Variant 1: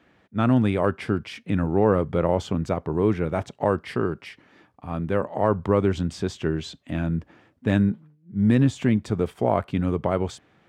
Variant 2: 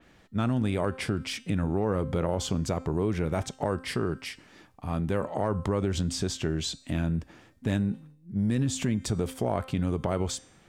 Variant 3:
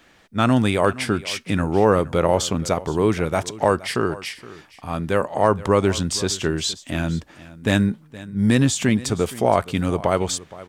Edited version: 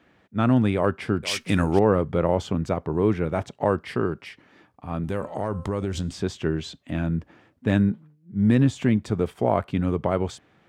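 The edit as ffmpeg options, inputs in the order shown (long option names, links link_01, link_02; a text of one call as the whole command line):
ffmpeg -i take0.wav -i take1.wav -i take2.wav -filter_complex "[0:a]asplit=3[link_01][link_02][link_03];[link_01]atrim=end=1.232[link_04];[2:a]atrim=start=1.228:end=1.792[link_05];[link_02]atrim=start=1.788:end=5.042[link_06];[1:a]atrim=start=5.038:end=6.112[link_07];[link_03]atrim=start=6.108[link_08];[link_04][link_05]acrossfade=duration=0.004:curve1=hsin:curve2=hsin[link_09];[link_09][link_06]acrossfade=duration=0.004:curve1=hsin:curve2=hsin[link_10];[link_10][link_07]acrossfade=duration=0.004:curve1=hsin:curve2=hsin[link_11];[link_11][link_08]acrossfade=duration=0.004:curve1=hsin:curve2=hsin" out.wav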